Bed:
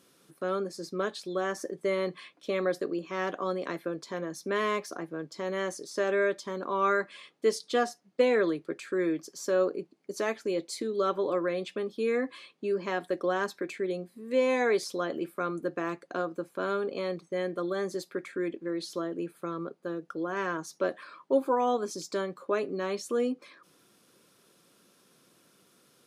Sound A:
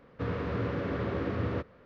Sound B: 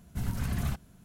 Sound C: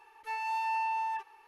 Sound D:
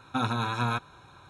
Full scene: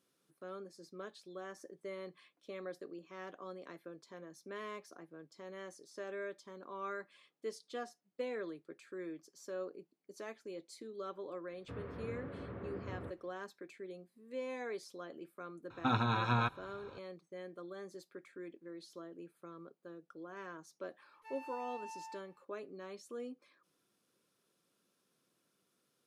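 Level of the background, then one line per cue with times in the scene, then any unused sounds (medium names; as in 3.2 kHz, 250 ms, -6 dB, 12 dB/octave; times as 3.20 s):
bed -16 dB
11.49 s: add A -13.5 dB + low-pass that closes with the level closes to 2 kHz, closed at -28.5 dBFS
15.70 s: add D -3.5 dB + low-pass 4.2 kHz
20.98 s: add C -16 dB
not used: B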